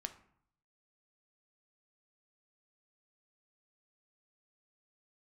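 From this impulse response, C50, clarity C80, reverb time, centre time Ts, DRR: 13.5 dB, 17.0 dB, 0.65 s, 8 ms, 7.5 dB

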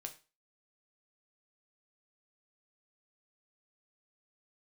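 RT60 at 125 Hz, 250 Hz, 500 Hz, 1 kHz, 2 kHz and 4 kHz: 0.30 s, 0.35 s, 0.30 s, 0.30 s, 0.30 s, 0.30 s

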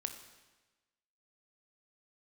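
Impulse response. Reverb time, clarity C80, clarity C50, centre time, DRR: 1.2 s, 10.5 dB, 9.0 dB, 18 ms, 7.0 dB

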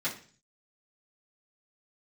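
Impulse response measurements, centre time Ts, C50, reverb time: 19 ms, 10.0 dB, 0.40 s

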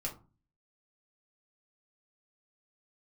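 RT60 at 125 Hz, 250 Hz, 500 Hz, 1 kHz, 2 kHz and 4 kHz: 0.65 s, 0.50 s, 0.35 s, 0.35 s, 0.20 s, 0.15 s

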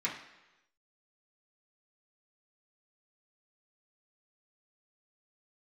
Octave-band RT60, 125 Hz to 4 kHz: 0.90 s, 0.85 s, 1.0 s, 1.0 s, 1.0 s, 0.95 s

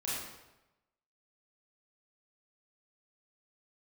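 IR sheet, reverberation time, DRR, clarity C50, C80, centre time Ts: 1.0 s, -8.0 dB, -1.5 dB, 2.0 dB, 80 ms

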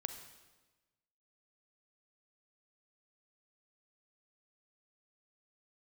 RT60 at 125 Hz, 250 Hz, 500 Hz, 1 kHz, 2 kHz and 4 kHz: 1.4 s, 1.3 s, 1.3 s, 1.2 s, 1.1 s, 1.1 s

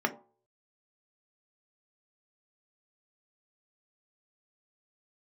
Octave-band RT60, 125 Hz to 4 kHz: 0.45 s, 0.35 s, 0.45 s, 0.45 s, 0.20 s, 0.15 s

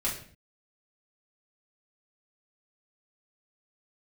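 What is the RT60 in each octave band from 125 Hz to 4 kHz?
0.60 s, 0.70 s, 0.50 s, 0.50 s, 0.50 s, 0.45 s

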